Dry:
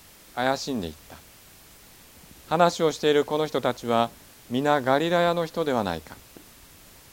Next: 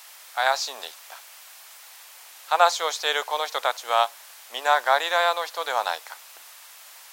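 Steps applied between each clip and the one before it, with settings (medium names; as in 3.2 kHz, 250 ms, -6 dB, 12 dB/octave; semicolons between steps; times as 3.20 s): high-pass 730 Hz 24 dB/octave; trim +5.5 dB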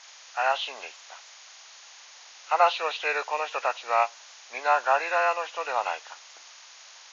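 knee-point frequency compression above 1.3 kHz 1.5:1; trim -2 dB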